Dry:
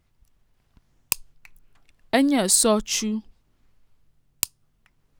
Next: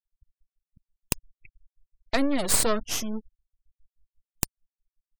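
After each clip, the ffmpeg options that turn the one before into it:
-af "aeval=exprs='max(val(0),0)':c=same,afftfilt=real='re*gte(hypot(re,im),0.01)':imag='im*gte(hypot(re,im),0.01)':win_size=1024:overlap=0.75"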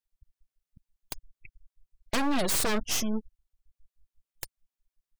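-filter_complex "[0:a]asplit=2[s0][s1];[s1]acontrast=85,volume=0.75[s2];[s0][s2]amix=inputs=2:normalize=0,aeval=exprs='0.266*(abs(mod(val(0)/0.266+3,4)-2)-1)':c=same,volume=0.473"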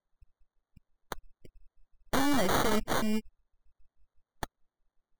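-af "acrusher=samples=17:mix=1:aa=0.000001"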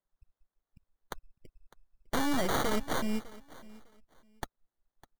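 -af "aecho=1:1:604|1208:0.1|0.022,volume=0.75"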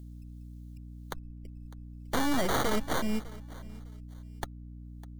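-filter_complex "[0:a]acrossover=split=140|2900[s0][s1][s2];[s2]acompressor=mode=upward:threshold=0.001:ratio=2.5[s3];[s0][s1][s3]amix=inputs=3:normalize=0,aeval=exprs='val(0)+0.00562*(sin(2*PI*60*n/s)+sin(2*PI*2*60*n/s)/2+sin(2*PI*3*60*n/s)/3+sin(2*PI*4*60*n/s)/4+sin(2*PI*5*60*n/s)/5)':c=same,volume=1.19"

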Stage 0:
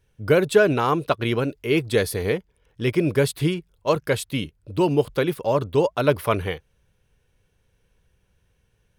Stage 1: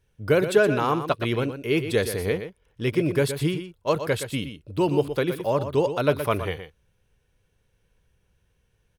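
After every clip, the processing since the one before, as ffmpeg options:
-af "aecho=1:1:120:0.316,volume=0.75"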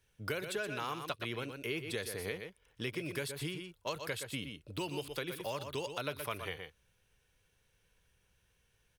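-filter_complex "[0:a]tiltshelf=f=890:g=-5,acrossover=split=96|1900[s0][s1][s2];[s0]acompressor=threshold=0.002:ratio=4[s3];[s1]acompressor=threshold=0.0158:ratio=4[s4];[s2]acompressor=threshold=0.01:ratio=4[s5];[s3][s4][s5]amix=inputs=3:normalize=0,volume=0.708"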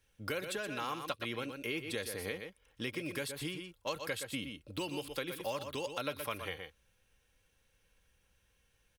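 -af "aecho=1:1:3.7:0.37"

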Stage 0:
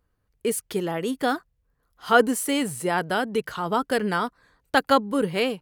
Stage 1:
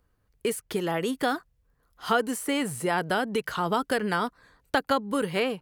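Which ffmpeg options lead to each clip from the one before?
-filter_complex "[0:a]acrossover=split=770|2100[s0][s1][s2];[s0]acompressor=threshold=0.0355:ratio=4[s3];[s1]acompressor=threshold=0.0316:ratio=4[s4];[s2]acompressor=threshold=0.0126:ratio=4[s5];[s3][s4][s5]amix=inputs=3:normalize=0,volume=1.33"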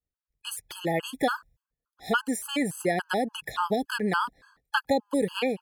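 -af "agate=range=0.0224:threshold=0.002:ratio=3:detection=peak,afftfilt=real='re*gt(sin(2*PI*3.5*pts/sr)*(1-2*mod(floor(b*sr/1024/840),2)),0)':imag='im*gt(sin(2*PI*3.5*pts/sr)*(1-2*mod(floor(b*sr/1024/840),2)),0)':win_size=1024:overlap=0.75,volume=1.33"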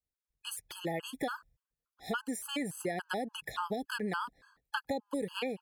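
-af "acompressor=threshold=0.0447:ratio=3,volume=0.562"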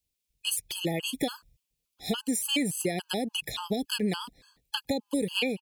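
-af "firequalizer=gain_entry='entry(220,0);entry(1400,-17);entry(2400,3)':delay=0.05:min_phase=1,volume=2.66"

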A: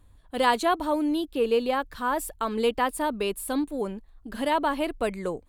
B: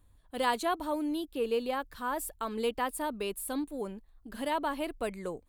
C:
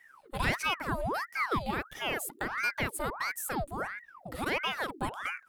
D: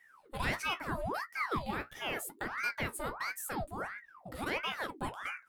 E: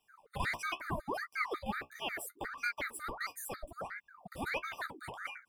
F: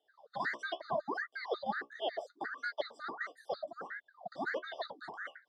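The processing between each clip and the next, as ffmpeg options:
-af "highshelf=f=9800:g=7.5,volume=0.447"
-filter_complex "[0:a]asplit=2[s0][s1];[s1]acompressor=threshold=0.01:ratio=6,volume=1.19[s2];[s0][s2]amix=inputs=2:normalize=0,aeval=exprs='val(0)*sin(2*PI*1100*n/s+1100*0.75/1.5*sin(2*PI*1.5*n/s))':c=same"
-af "flanger=delay=8.9:depth=7.5:regen=-47:speed=0.82:shape=triangular"
-af "afftfilt=real='re*gt(sin(2*PI*5.5*pts/sr)*(1-2*mod(floor(b*sr/1024/1200),2)),0)':imag='im*gt(sin(2*PI*5.5*pts/sr)*(1-2*mod(floor(b*sr/1024/1200),2)),0)':win_size=1024:overlap=0.75,volume=1.12"
-filter_complex "[0:a]asuperstop=centerf=2400:order=4:qfactor=1.7,highpass=410,equalizer=f=650:t=q:w=4:g=5,equalizer=f=950:t=q:w=4:g=-8,equalizer=f=1300:t=q:w=4:g=-10,equalizer=f=2700:t=q:w=4:g=-9,lowpass=f=4400:w=0.5412,lowpass=f=4400:w=1.3066,asplit=2[s0][s1];[s1]afreqshift=1.5[s2];[s0][s2]amix=inputs=2:normalize=1,volume=2.82"

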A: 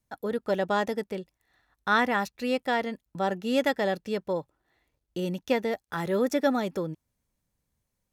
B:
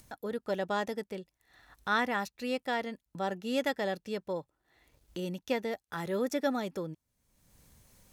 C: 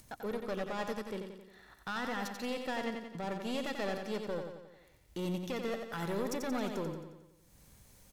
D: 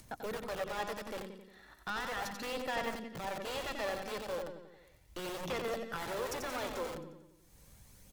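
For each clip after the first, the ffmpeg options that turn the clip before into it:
-af "acompressor=mode=upward:threshold=0.0178:ratio=2.5,equalizer=f=8400:t=o:w=2.8:g=3,volume=0.501"
-filter_complex "[0:a]alimiter=level_in=1.33:limit=0.0631:level=0:latency=1:release=39,volume=0.75,aeval=exprs='clip(val(0),-1,0.0158)':c=same,asplit=2[s0][s1];[s1]aecho=0:1:89|178|267|356|445|534|623:0.501|0.276|0.152|0.0834|0.0459|0.0252|0.0139[s2];[s0][s2]amix=inputs=2:normalize=0"
-filter_complex "[0:a]acrossover=split=360[s0][s1];[s0]aeval=exprs='(mod(100*val(0)+1,2)-1)/100':c=same[s2];[s2][s1]amix=inputs=2:normalize=0,aphaser=in_gain=1:out_gain=1:delay=3.9:decay=0.28:speed=0.36:type=sinusoidal"

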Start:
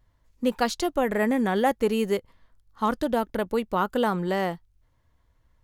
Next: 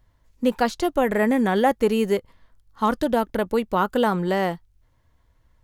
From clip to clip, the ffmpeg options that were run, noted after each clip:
-filter_complex "[0:a]bandreject=f=1200:w=29,acrossover=split=2100[s0][s1];[s1]alimiter=level_in=1.88:limit=0.0631:level=0:latency=1:release=48,volume=0.531[s2];[s0][s2]amix=inputs=2:normalize=0,volume=1.5"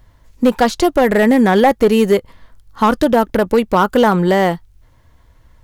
-filter_complex "[0:a]asplit=2[s0][s1];[s1]acompressor=threshold=0.0447:ratio=6,volume=1[s2];[s0][s2]amix=inputs=2:normalize=0,asoftclip=type=hard:threshold=0.266,volume=2.11"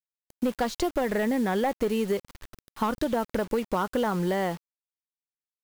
-af "acompressor=threshold=0.178:ratio=4,acrusher=bits=5:mix=0:aa=0.000001,volume=0.376"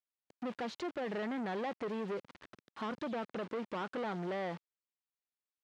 -af "asoftclip=type=tanh:threshold=0.0251,highpass=180,lowpass=3500,volume=0.75"

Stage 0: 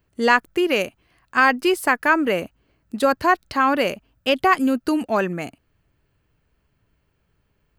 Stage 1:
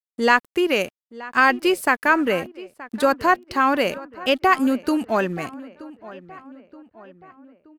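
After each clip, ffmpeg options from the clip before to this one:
-filter_complex "[0:a]aeval=exprs='sgn(val(0))*max(abs(val(0))-0.00422,0)':c=same,asplit=2[s0][s1];[s1]adelay=925,lowpass=f=2600:p=1,volume=0.126,asplit=2[s2][s3];[s3]adelay=925,lowpass=f=2600:p=1,volume=0.53,asplit=2[s4][s5];[s5]adelay=925,lowpass=f=2600:p=1,volume=0.53,asplit=2[s6][s7];[s7]adelay=925,lowpass=f=2600:p=1,volume=0.53[s8];[s0][s2][s4][s6][s8]amix=inputs=5:normalize=0"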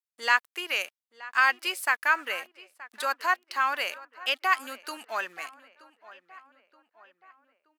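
-af "highpass=1200,volume=0.708"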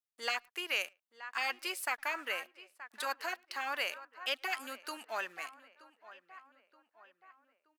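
-filter_complex "[0:a]afftfilt=real='re*lt(hypot(re,im),0.316)':imag='im*lt(hypot(re,im),0.316)':win_size=1024:overlap=0.75,asplit=2[s0][s1];[s1]adelay=110,highpass=300,lowpass=3400,asoftclip=type=hard:threshold=0.0631,volume=0.0316[s2];[s0][s2]amix=inputs=2:normalize=0,volume=0.596"

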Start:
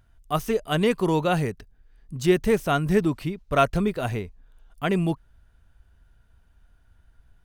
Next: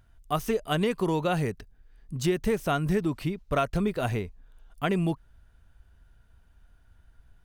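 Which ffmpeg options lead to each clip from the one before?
-af "acompressor=threshold=0.0794:ratio=5"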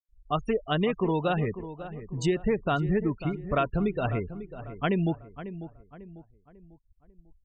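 -filter_complex "[0:a]afftfilt=real='re*gte(hypot(re,im),0.0224)':imag='im*gte(hypot(re,im),0.0224)':win_size=1024:overlap=0.75,asplit=2[s0][s1];[s1]adelay=546,lowpass=f=1700:p=1,volume=0.237,asplit=2[s2][s3];[s3]adelay=546,lowpass=f=1700:p=1,volume=0.42,asplit=2[s4][s5];[s5]adelay=546,lowpass=f=1700:p=1,volume=0.42,asplit=2[s6][s7];[s7]adelay=546,lowpass=f=1700:p=1,volume=0.42[s8];[s0][s2][s4][s6][s8]amix=inputs=5:normalize=0"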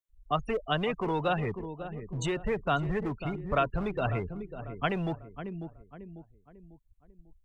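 -filter_complex "[0:a]acrossover=split=120|470|1700[s0][s1][s2][s3];[s1]asoftclip=type=hard:threshold=0.0178[s4];[s3]asuperstop=centerf=5000:order=4:qfactor=3.4[s5];[s0][s4][s2][s5]amix=inputs=4:normalize=0"

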